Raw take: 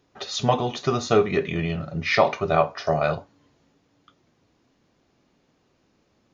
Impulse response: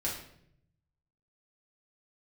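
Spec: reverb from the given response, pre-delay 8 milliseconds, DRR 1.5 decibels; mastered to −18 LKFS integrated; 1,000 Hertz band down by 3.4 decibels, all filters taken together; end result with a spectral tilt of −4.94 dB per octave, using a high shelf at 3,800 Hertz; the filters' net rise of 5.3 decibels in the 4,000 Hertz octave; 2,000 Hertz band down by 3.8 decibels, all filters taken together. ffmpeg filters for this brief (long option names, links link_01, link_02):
-filter_complex "[0:a]equalizer=frequency=1000:width_type=o:gain=-4,equalizer=frequency=2000:width_type=o:gain=-7,highshelf=frequency=3800:gain=6.5,equalizer=frequency=4000:width_type=o:gain=4.5,asplit=2[link_01][link_02];[1:a]atrim=start_sample=2205,adelay=8[link_03];[link_02][link_03]afir=irnorm=-1:irlink=0,volume=-6dB[link_04];[link_01][link_04]amix=inputs=2:normalize=0,volume=3.5dB"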